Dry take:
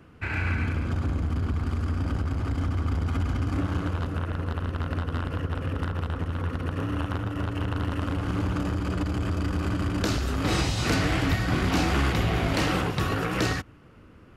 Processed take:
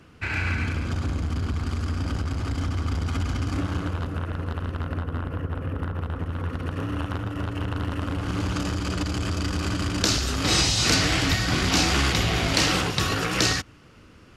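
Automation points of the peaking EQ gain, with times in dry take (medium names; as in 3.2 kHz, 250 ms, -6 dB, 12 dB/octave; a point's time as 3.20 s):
peaking EQ 5.7 kHz 2.1 oct
3.47 s +9.5 dB
4.07 s +0.5 dB
4.71 s +0.5 dB
5.14 s -9.5 dB
5.88 s -9.5 dB
6.65 s +2 dB
8.09 s +2 dB
8.54 s +13 dB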